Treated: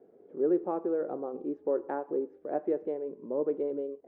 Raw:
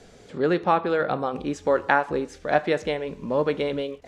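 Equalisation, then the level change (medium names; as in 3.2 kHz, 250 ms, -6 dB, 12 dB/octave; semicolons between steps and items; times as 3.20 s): ladder band-pass 420 Hz, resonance 50%; tilt EQ -2 dB/octave; 0.0 dB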